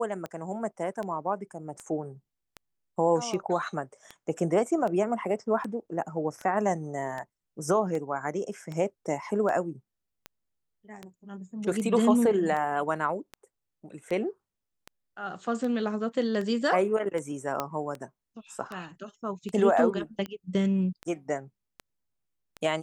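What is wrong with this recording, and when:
tick 78 rpm -23 dBFS
17.6 pop -14 dBFS

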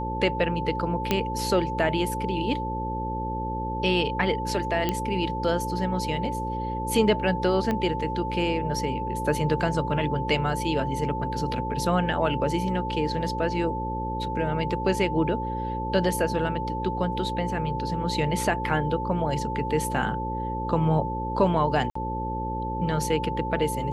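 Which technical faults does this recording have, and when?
buzz 60 Hz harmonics 9 -32 dBFS
tone 880 Hz -30 dBFS
1.11 pop -8 dBFS
4.89 pop -11 dBFS
7.71 pop -14 dBFS
21.9–21.95 gap 54 ms

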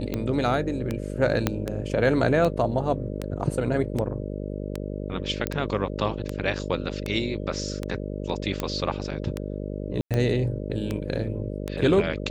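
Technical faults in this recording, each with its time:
buzz 50 Hz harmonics 12 -32 dBFS
tick 78 rpm -14 dBFS
1.47 pop -7 dBFS
5.47 pop -10 dBFS
8.6 pop
10.01–10.11 gap 97 ms

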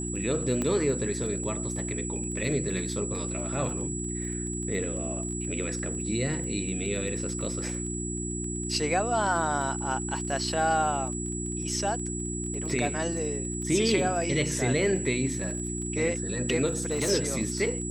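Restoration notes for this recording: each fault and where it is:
crackle 23/s -36 dBFS
hum 60 Hz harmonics 6 -34 dBFS
tone 7800 Hz -35 dBFS
0.62 pop -17 dBFS
16.66–17.11 clipped -22 dBFS

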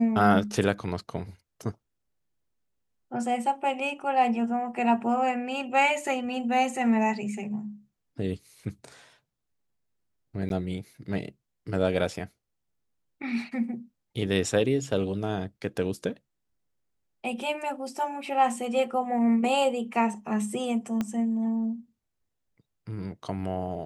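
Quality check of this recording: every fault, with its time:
10.49–10.5 gap
21.01 pop -16 dBFS

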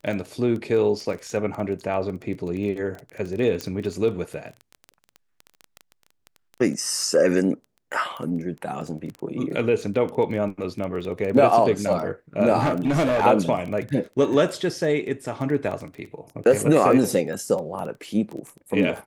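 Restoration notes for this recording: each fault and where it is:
crackle 14/s -29 dBFS
3.61 pop -14 dBFS
12.59–13.25 clipped -17 dBFS

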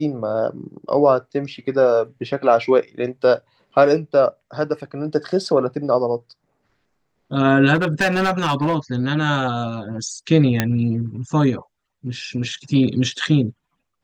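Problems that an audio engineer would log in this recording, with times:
7.74–8.75 clipped -14 dBFS
10.6 pop -3 dBFS

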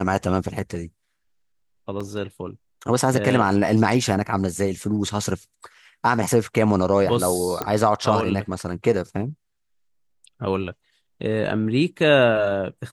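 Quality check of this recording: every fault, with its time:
2 gap 4.8 ms
7.62 pop -10 dBFS

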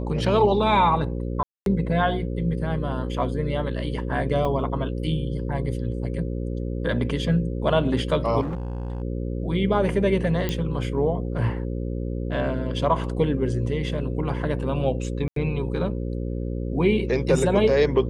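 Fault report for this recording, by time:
buzz 60 Hz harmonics 9 -28 dBFS
1.43–1.66 gap 0.232 s
4.45 gap 3.1 ms
8.41–9.02 clipped -25.5 dBFS
10.49 pop -12 dBFS
15.28–15.36 gap 83 ms

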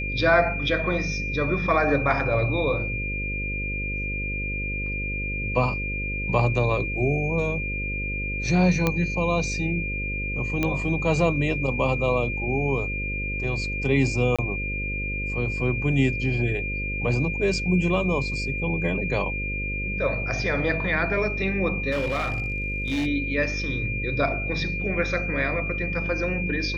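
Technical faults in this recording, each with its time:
buzz 50 Hz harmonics 11 -31 dBFS
tone 2400 Hz -29 dBFS
8.87 pop -8 dBFS
10.63 pop -11 dBFS
14.36–14.39 gap 26 ms
21.91–23.07 clipped -21.5 dBFS

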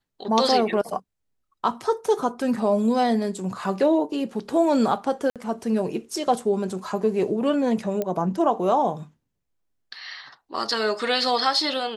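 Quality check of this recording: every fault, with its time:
5.3–5.36 gap 57 ms
8.02 pop -14 dBFS

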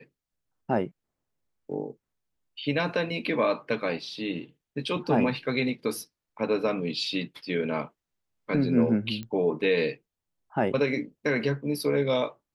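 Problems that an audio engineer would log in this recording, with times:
9.23 pop -24 dBFS

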